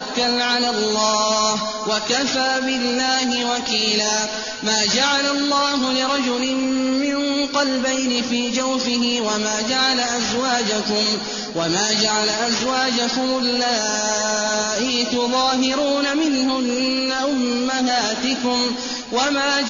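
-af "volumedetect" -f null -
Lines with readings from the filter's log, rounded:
mean_volume: -19.9 dB
max_volume: -4.2 dB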